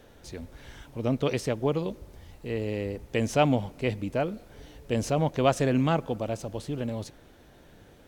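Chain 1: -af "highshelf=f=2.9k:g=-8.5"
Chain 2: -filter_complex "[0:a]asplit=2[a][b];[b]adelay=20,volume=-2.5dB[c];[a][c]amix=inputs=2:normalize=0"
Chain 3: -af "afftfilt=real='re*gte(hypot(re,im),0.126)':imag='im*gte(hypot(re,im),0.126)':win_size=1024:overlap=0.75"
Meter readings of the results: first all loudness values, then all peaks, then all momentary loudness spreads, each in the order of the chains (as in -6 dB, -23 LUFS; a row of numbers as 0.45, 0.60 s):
-29.0, -26.5, -29.5 LUFS; -9.5, -5.0, -10.0 dBFS; 19, 19, 13 LU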